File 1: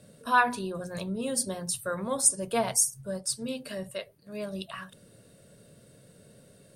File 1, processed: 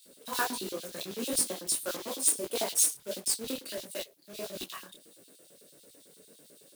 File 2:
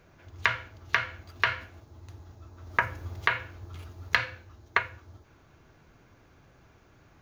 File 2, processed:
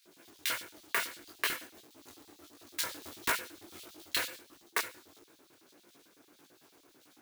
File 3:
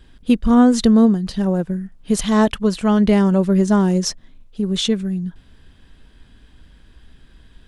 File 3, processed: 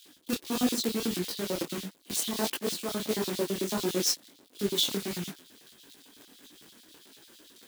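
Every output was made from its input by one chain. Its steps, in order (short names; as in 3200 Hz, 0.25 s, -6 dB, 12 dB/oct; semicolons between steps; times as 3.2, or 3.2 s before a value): block floating point 3-bit; reverse; compressor 6:1, threshold -23 dBFS; reverse; LFO high-pass square 9 Hz 310–3700 Hz; high shelf 7600 Hz +9 dB; detuned doubles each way 53 cents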